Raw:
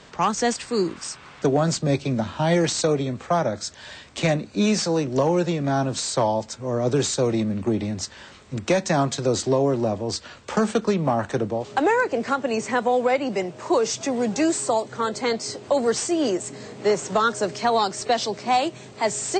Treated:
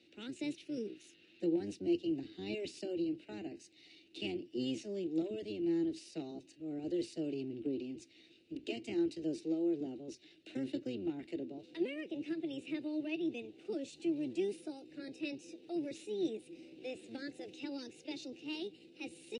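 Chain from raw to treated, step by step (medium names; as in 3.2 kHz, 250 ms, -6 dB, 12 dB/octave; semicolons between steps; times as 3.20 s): octave divider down 1 oct, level -2 dB; vowel filter i; pitch shift +3.5 st; trim -5 dB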